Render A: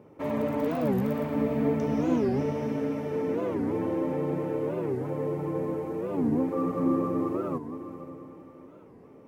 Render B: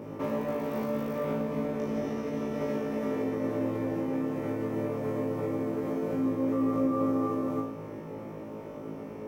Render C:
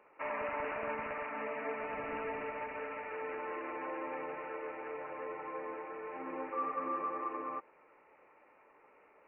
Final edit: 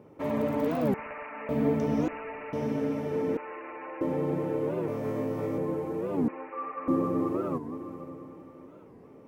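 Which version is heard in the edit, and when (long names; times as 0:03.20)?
A
0:00.94–0:01.49: punch in from C
0:02.08–0:02.53: punch in from C
0:03.37–0:04.01: punch in from C
0:04.88–0:05.58: punch in from B
0:06.28–0:06.88: punch in from C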